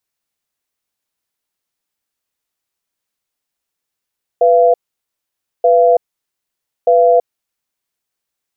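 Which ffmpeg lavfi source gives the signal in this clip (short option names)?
-f lavfi -i "aevalsrc='0.335*(sin(2*PI*495*t)+sin(2*PI*684*t))*clip(min(mod(t,1.23),0.33-mod(t,1.23))/0.005,0,1)':d=3.09:s=44100"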